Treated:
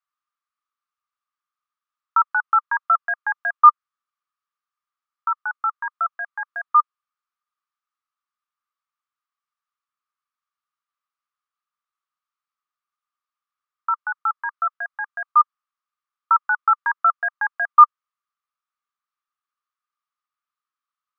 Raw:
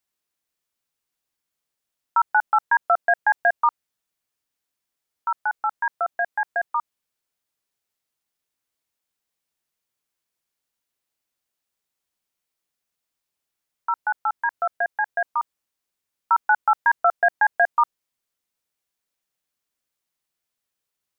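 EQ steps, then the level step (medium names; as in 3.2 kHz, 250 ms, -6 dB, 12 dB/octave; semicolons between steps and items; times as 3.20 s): resonant high-pass 1.2 kHz, resonance Q 13; distance through air 97 m; -8.5 dB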